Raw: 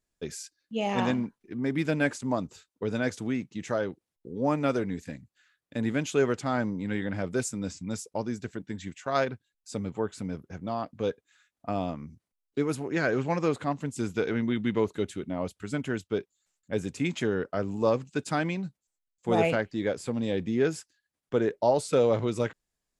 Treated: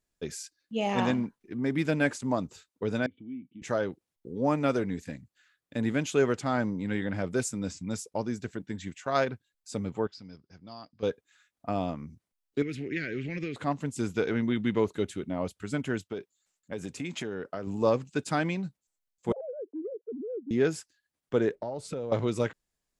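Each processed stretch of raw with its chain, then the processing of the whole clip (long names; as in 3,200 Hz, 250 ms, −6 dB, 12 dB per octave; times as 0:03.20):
0:03.06–0:03.62: downward compressor 2.5 to 1, threshold −36 dBFS + formant resonators in series i
0:10.07–0:11.03: transistor ladder low-pass 5,100 Hz, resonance 85% + parametric band 540 Hz −3.5 dB 0.75 octaves
0:12.62–0:13.56: downward compressor, threshold −28 dBFS + drawn EQ curve 370 Hz 0 dB, 960 Hz −25 dB, 2,000 Hz +9 dB, 3,600 Hz +3 dB, 10,000 Hz −15 dB
0:16.03–0:17.67: downward compressor 5 to 1, threshold −30 dBFS + low-shelf EQ 68 Hz −11.5 dB
0:19.32–0:20.51: three sine waves on the formant tracks + transistor ladder low-pass 470 Hz, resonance 65% + downward compressor 5 to 1, threshold −33 dBFS
0:21.55–0:22.12: spectral tilt −2 dB per octave + downward compressor, threshold −32 dBFS
whole clip: no processing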